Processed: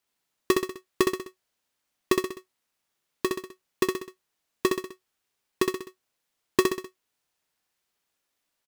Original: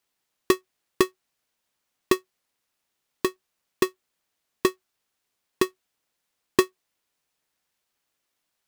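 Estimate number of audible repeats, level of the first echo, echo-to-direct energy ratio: 4, -4.0 dB, -3.0 dB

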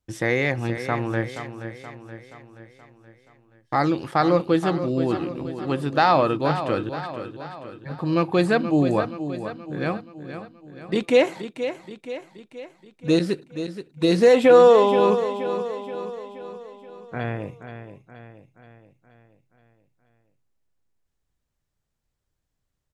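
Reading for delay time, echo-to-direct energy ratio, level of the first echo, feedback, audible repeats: 0.476 s, -9.0 dB, -10.5 dB, 53%, 5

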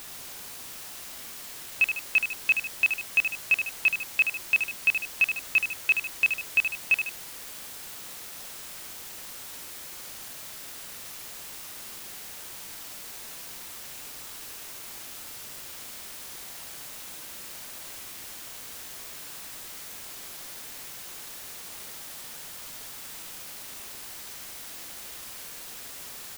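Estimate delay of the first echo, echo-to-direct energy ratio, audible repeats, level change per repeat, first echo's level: 75 ms, -6.5 dB, 2, -6.5 dB, -7.5 dB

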